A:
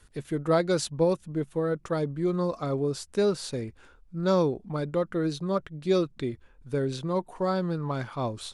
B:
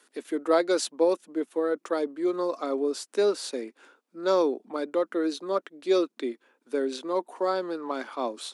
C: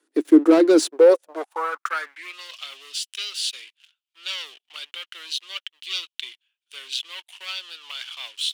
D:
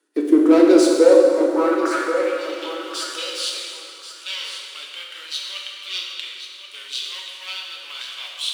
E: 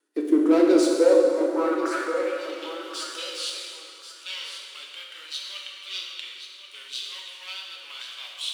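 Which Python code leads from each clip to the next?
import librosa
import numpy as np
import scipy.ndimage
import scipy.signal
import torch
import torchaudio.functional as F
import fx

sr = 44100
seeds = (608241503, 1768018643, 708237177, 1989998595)

y1 = scipy.signal.sosfilt(scipy.signal.butter(8, 250.0, 'highpass', fs=sr, output='sos'), x)
y1 = y1 * 10.0 ** (1.5 / 20.0)
y2 = fx.leveller(y1, sr, passes=3)
y2 = fx.filter_sweep_highpass(y2, sr, from_hz=310.0, to_hz=3000.0, start_s=0.81, end_s=2.42, q=6.2)
y2 = y2 * 10.0 ** (-5.5 / 20.0)
y3 = fx.echo_feedback(y2, sr, ms=1082, feedback_pct=17, wet_db=-10.0)
y3 = fx.rev_plate(y3, sr, seeds[0], rt60_s=2.6, hf_ratio=0.7, predelay_ms=0, drr_db=-2.0)
y3 = y3 * 10.0 ** (-1.5 / 20.0)
y4 = fx.wow_flutter(y3, sr, seeds[1], rate_hz=2.1, depth_cents=28.0)
y4 = y4 * 10.0 ** (-5.5 / 20.0)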